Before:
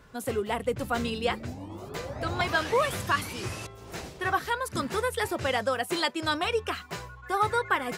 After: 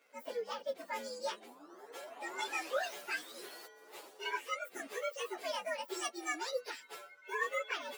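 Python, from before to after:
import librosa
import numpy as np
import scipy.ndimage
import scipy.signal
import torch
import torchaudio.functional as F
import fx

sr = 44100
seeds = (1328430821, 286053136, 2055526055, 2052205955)

y = fx.partial_stretch(x, sr, pct=122)
y = scipy.signal.sosfilt(scipy.signal.butter(4, 350.0, 'highpass', fs=sr, output='sos'), y)
y = y * 10.0 ** (-6.5 / 20.0)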